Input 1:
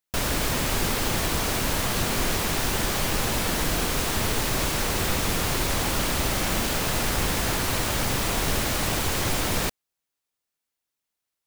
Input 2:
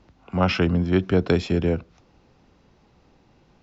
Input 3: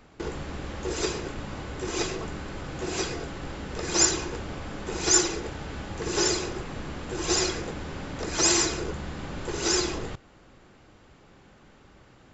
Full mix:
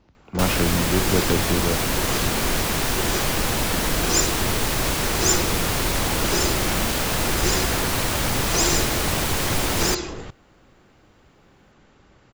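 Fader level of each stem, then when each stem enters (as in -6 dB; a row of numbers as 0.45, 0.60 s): +2.5, -3.0, -0.5 dB; 0.25, 0.00, 0.15 s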